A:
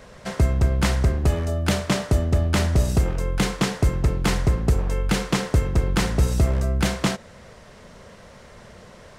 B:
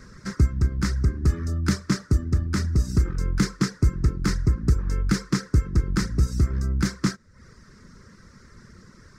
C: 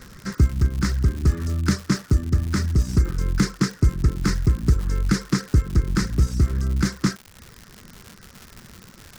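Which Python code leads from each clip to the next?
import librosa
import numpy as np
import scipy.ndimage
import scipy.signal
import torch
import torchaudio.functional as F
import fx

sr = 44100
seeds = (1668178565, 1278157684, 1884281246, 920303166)

y1 = fx.rider(x, sr, range_db=4, speed_s=0.5)
y1 = fx.curve_eq(y1, sr, hz=(340.0, 700.0, 1300.0, 1900.0, 3000.0, 5100.0, 10000.0), db=(0, -24, -1, -4, -18, 1, -9))
y1 = fx.dereverb_blind(y1, sr, rt60_s=0.57)
y2 = fx.dmg_crackle(y1, sr, seeds[0], per_s=200.0, level_db=-31.0)
y2 = y2 * 10.0 ** (2.0 / 20.0)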